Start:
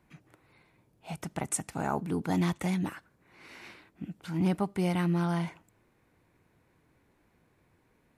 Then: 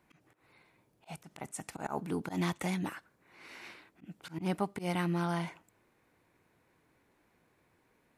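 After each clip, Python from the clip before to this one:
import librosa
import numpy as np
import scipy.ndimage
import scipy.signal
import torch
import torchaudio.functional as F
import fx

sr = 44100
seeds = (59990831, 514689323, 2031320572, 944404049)

y = fx.low_shelf(x, sr, hz=200.0, db=-9.0)
y = fx.auto_swell(y, sr, attack_ms=109.0)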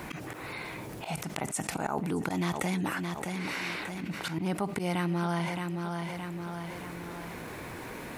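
y = fx.echo_feedback(x, sr, ms=620, feedback_pct=26, wet_db=-15.0)
y = fx.env_flatten(y, sr, amount_pct=70)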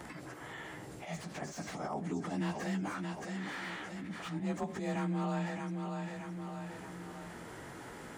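y = fx.partial_stretch(x, sr, pct=92)
y = fx.slew_limit(y, sr, full_power_hz=37.0)
y = y * 10.0 ** (-3.5 / 20.0)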